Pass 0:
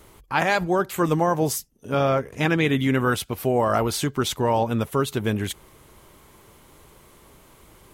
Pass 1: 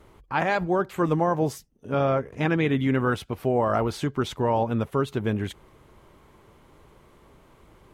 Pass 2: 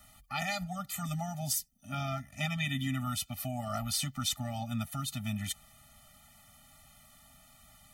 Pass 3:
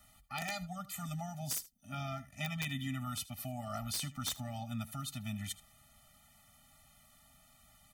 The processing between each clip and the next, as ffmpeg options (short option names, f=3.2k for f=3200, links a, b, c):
-af "lowpass=f=1.9k:p=1,volume=-1.5dB"
-filter_complex "[0:a]acrossover=split=260|3000[a][b][c];[b]acompressor=threshold=-32dB:ratio=3[d];[a][d][c]amix=inputs=3:normalize=0,crystalizer=i=10:c=0,afftfilt=real='re*eq(mod(floor(b*sr/1024/290),2),0)':imag='im*eq(mod(floor(b*sr/1024/290),2),0)':win_size=1024:overlap=0.75,volume=-7.5dB"
-af "aeval=exprs='(mod(12.6*val(0)+1,2)-1)/12.6':c=same,aecho=1:1:78:0.119,volume=-5dB"